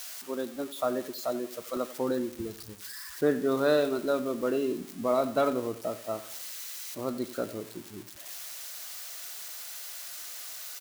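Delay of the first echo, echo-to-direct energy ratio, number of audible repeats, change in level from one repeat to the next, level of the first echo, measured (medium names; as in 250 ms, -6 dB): 89 ms, -15.0 dB, 3, -7.0 dB, -16.0 dB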